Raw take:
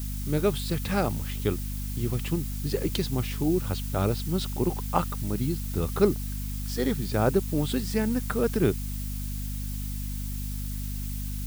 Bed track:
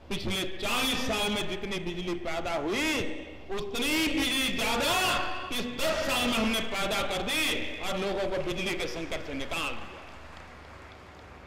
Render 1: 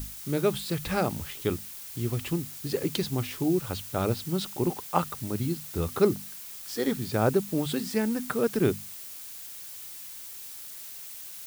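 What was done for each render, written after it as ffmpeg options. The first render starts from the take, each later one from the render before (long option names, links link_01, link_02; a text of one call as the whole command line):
ffmpeg -i in.wav -af "bandreject=frequency=50:width_type=h:width=6,bandreject=frequency=100:width_type=h:width=6,bandreject=frequency=150:width_type=h:width=6,bandreject=frequency=200:width_type=h:width=6,bandreject=frequency=250:width_type=h:width=6" out.wav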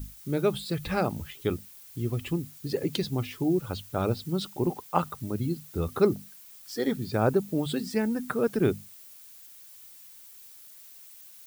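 ffmpeg -i in.wav -af "afftdn=noise_reduction=10:noise_floor=-42" out.wav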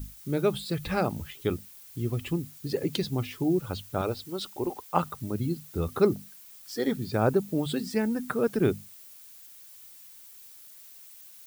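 ffmpeg -i in.wav -filter_complex "[0:a]asettb=1/sr,asplit=3[link_01][link_02][link_03];[link_01]atrim=end=4.014[link_04];[link_02]atrim=start=4.01:end=4.9,asetpts=PTS-STARTPTS,afade=type=in:duration=0.004:curve=qsin,afade=type=out:start_time=0.886:duration=0.004:curve=qsin,equalizer=frequency=160:width=1.5:gain=-15[link_05];[link_03]atrim=start=4.896[link_06];[link_04][link_05]acrossfade=duration=0.004:curve1=hsin:curve2=qsin[link_07];[link_07][link_06]acrossfade=duration=0.004:curve1=qsin:curve2=hsin" out.wav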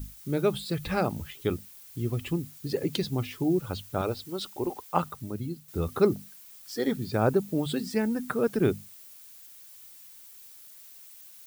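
ffmpeg -i in.wav -filter_complex "[0:a]asplit=2[link_01][link_02];[link_01]atrim=end=5.68,asetpts=PTS-STARTPTS,afade=type=out:start_time=4.88:duration=0.8:silence=0.398107[link_03];[link_02]atrim=start=5.68,asetpts=PTS-STARTPTS,afade=type=in:duration=0.004:curve=hsin:silence=0.398107[link_04];[link_03][link_04]concat=n=2:v=0:a=1" out.wav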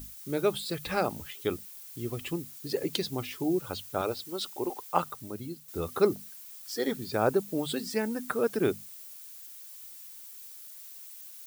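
ffmpeg -i in.wav -af "bass=frequency=250:gain=-9,treble=frequency=4000:gain=3" out.wav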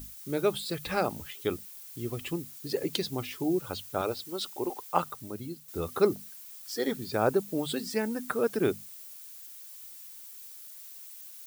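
ffmpeg -i in.wav -af anull out.wav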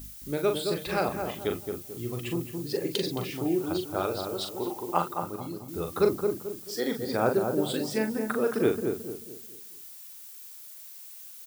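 ffmpeg -i in.wav -filter_complex "[0:a]asplit=2[link_01][link_02];[link_02]adelay=41,volume=-6dB[link_03];[link_01][link_03]amix=inputs=2:normalize=0,asplit=2[link_04][link_05];[link_05]adelay=219,lowpass=frequency=970:poles=1,volume=-4dB,asplit=2[link_06][link_07];[link_07]adelay=219,lowpass=frequency=970:poles=1,volume=0.4,asplit=2[link_08][link_09];[link_09]adelay=219,lowpass=frequency=970:poles=1,volume=0.4,asplit=2[link_10][link_11];[link_11]adelay=219,lowpass=frequency=970:poles=1,volume=0.4,asplit=2[link_12][link_13];[link_13]adelay=219,lowpass=frequency=970:poles=1,volume=0.4[link_14];[link_04][link_06][link_08][link_10][link_12][link_14]amix=inputs=6:normalize=0" out.wav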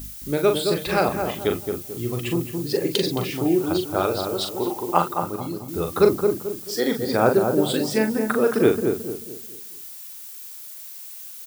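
ffmpeg -i in.wav -af "volume=7dB" out.wav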